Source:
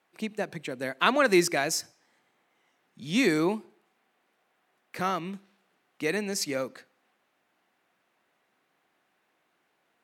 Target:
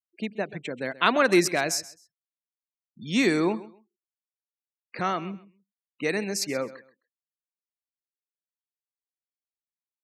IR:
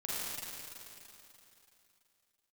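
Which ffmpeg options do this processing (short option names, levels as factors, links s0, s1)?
-af "afftfilt=real='re*gte(hypot(re,im),0.00794)':imag='im*gte(hypot(re,im),0.00794)':win_size=1024:overlap=0.75,aecho=1:1:131|262:0.126|0.0277,volume=1.19"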